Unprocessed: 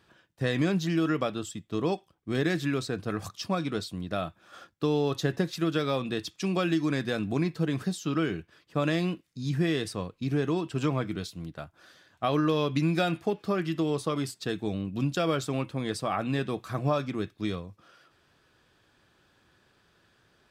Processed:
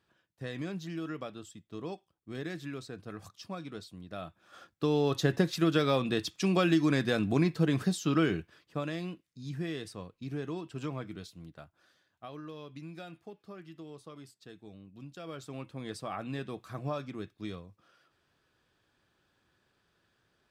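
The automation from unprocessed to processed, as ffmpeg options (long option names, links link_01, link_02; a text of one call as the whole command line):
ffmpeg -i in.wav -af "volume=11.5dB,afade=type=in:start_time=4.1:duration=1.27:silence=0.237137,afade=type=out:start_time=8.38:duration=0.48:silence=0.298538,afade=type=out:start_time=11.59:duration=0.73:silence=0.334965,afade=type=in:start_time=15.15:duration=0.74:silence=0.298538" out.wav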